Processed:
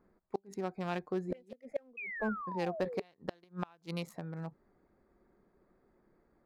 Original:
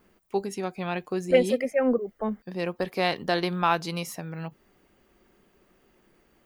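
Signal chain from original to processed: local Wiener filter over 15 samples; inverted gate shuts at -17 dBFS, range -32 dB; painted sound fall, 1.97–3.02 s, 410–2600 Hz -36 dBFS; trim -5.5 dB

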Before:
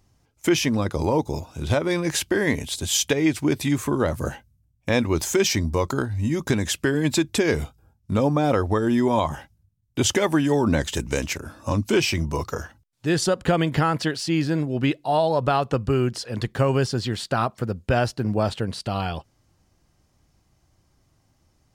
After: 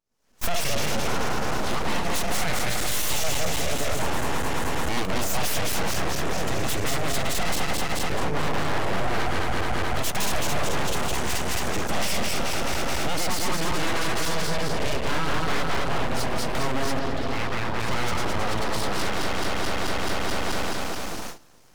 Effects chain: backward echo that repeats 108 ms, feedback 79%, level -1 dB; recorder AGC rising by 72 dB/s; gate with hold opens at -16 dBFS; high-pass 170 Hz 6 dB/octave; saturation -15.5 dBFS, distortion -14 dB; 16.99–17.80 s: distance through air 340 m; full-wave rectifier

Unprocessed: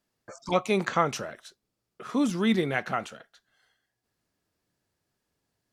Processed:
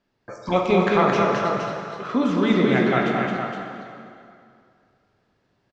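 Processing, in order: de-hum 74.41 Hz, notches 28; in parallel at +0.5 dB: compression, threshold -34 dBFS, peak gain reduction 14.5 dB; on the sum: distance through air 190 m; on a send: multi-tap echo 218/467 ms -3.5/-6 dB; on the sum: plate-style reverb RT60 2.4 s, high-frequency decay 0.8×, DRR 0.5 dB; trim +2 dB

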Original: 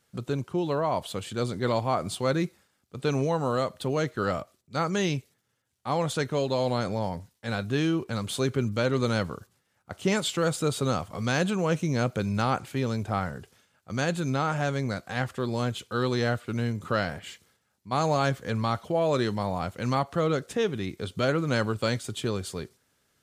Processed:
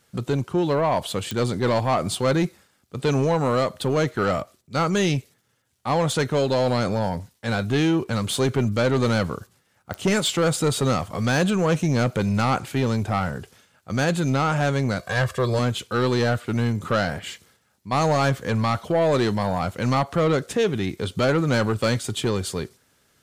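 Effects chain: 14.99–15.59 s: comb 1.8 ms, depth 85%; saturation -21.5 dBFS, distortion -14 dB; clicks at 1.31/9.94 s, -20 dBFS; trim +7.5 dB

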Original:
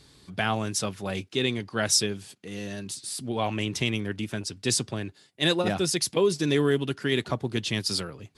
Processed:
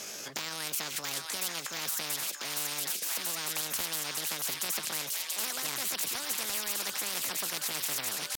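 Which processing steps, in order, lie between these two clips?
frequency weighting A; peak limiter -19 dBFS, peak gain reduction 10 dB; pitch shift +6.5 st; on a send: feedback echo behind a high-pass 683 ms, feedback 70%, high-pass 2.6 kHz, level -7 dB; on the sum: spectrum-flattening compressor 10:1

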